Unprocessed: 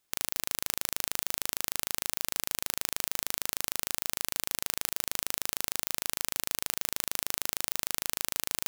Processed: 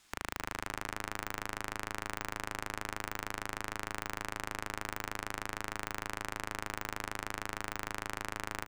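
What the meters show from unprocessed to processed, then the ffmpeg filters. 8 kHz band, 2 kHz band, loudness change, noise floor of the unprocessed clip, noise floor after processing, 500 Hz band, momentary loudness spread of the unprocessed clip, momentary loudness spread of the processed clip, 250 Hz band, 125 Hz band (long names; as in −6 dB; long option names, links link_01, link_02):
−14.0 dB, +1.0 dB, −8.5 dB, −76 dBFS, −54 dBFS, +1.0 dB, 0 LU, 0 LU, +3.5 dB, +4.0 dB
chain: -filter_complex "[0:a]aemphasis=mode=reproduction:type=cd,aeval=exprs='0.282*(cos(1*acos(clip(val(0)/0.282,-1,1)))-cos(1*PI/2))+0.141*(cos(2*acos(clip(val(0)/0.282,-1,1)))-cos(2*PI/2))+0.141*(cos(4*acos(clip(val(0)/0.282,-1,1)))-cos(4*PI/2))+0.0708*(cos(8*acos(clip(val(0)/0.282,-1,1)))-cos(8*PI/2))':channel_layout=same,equalizer=frequency=125:width_type=o:width=1:gain=-6,equalizer=frequency=500:width_type=o:width=1:gain=-10,equalizer=frequency=8000:width_type=o:width=1:gain=5,acrossover=split=7900[link_01][link_02];[link_01]acontrast=72[link_03];[link_03][link_02]amix=inputs=2:normalize=0,asoftclip=type=tanh:threshold=-18dB,acrossover=split=2600[link_04][link_05];[link_05]acompressor=threshold=-52dB:ratio=4:attack=1:release=60[link_06];[link_04][link_06]amix=inputs=2:normalize=0,asplit=2[link_07][link_08];[link_08]adelay=274,lowpass=frequency=1700:poles=1,volume=-7dB,asplit=2[link_09][link_10];[link_10]adelay=274,lowpass=frequency=1700:poles=1,volume=0.49,asplit=2[link_11][link_12];[link_12]adelay=274,lowpass=frequency=1700:poles=1,volume=0.49,asplit=2[link_13][link_14];[link_14]adelay=274,lowpass=frequency=1700:poles=1,volume=0.49,asplit=2[link_15][link_16];[link_16]adelay=274,lowpass=frequency=1700:poles=1,volume=0.49,asplit=2[link_17][link_18];[link_18]adelay=274,lowpass=frequency=1700:poles=1,volume=0.49[link_19];[link_09][link_11][link_13][link_15][link_17][link_19]amix=inputs=6:normalize=0[link_20];[link_07][link_20]amix=inputs=2:normalize=0,volume=10dB"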